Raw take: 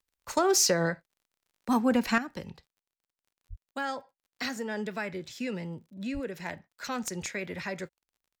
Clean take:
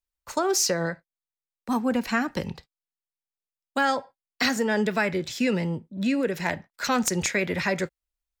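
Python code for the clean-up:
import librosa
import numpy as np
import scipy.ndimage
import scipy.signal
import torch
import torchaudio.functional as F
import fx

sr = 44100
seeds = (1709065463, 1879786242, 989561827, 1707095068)

y = fx.fix_declip(x, sr, threshold_db=-15.5)
y = fx.fix_declick_ar(y, sr, threshold=6.5)
y = fx.fix_deplosive(y, sr, at_s=(3.49, 6.13))
y = fx.fix_level(y, sr, at_s=2.18, step_db=10.0)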